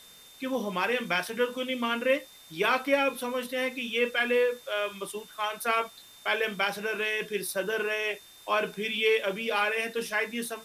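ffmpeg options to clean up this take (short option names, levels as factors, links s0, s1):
-af "adeclick=t=4,bandreject=f=3600:w=30,afwtdn=0.0022"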